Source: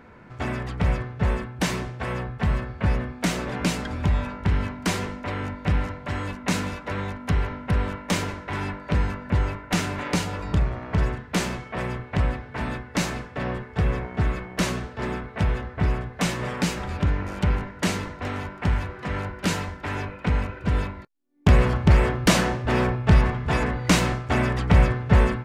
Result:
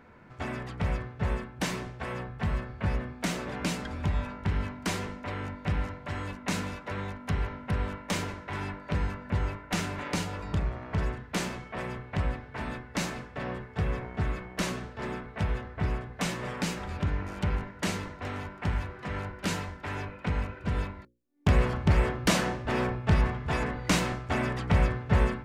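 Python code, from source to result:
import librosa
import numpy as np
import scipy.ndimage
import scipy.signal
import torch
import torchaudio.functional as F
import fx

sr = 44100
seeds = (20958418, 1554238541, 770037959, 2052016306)

y = fx.hum_notches(x, sr, base_hz=60, count=9)
y = F.gain(torch.from_numpy(y), -5.5).numpy()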